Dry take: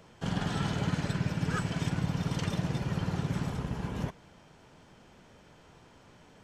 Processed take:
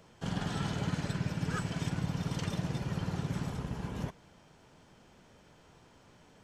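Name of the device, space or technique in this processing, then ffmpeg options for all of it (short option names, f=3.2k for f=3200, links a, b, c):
exciter from parts: -filter_complex "[0:a]asplit=2[a][b];[b]highpass=3.2k,asoftclip=type=tanh:threshold=-39dB,volume=-11dB[c];[a][c]amix=inputs=2:normalize=0,volume=-3dB"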